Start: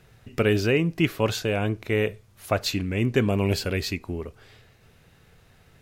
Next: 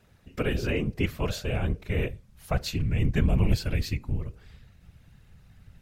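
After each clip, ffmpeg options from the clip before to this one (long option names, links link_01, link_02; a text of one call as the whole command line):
ffmpeg -i in.wav -af "bandreject=frequency=138.3:width_type=h:width=4,bandreject=frequency=276.6:width_type=h:width=4,bandreject=frequency=414.9:width_type=h:width=4,bandreject=frequency=553.2:width_type=h:width=4,afftfilt=real='hypot(re,im)*cos(2*PI*random(0))':imag='hypot(re,im)*sin(2*PI*random(1))':win_size=512:overlap=0.75,asubboost=boost=6:cutoff=150" out.wav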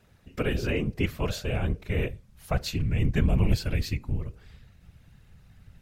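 ffmpeg -i in.wav -af anull out.wav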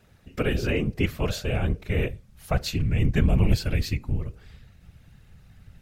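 ffmpeg -i in.wav -af "bandreject=frequency=1000:width=21,volume=2.5dB" out.wav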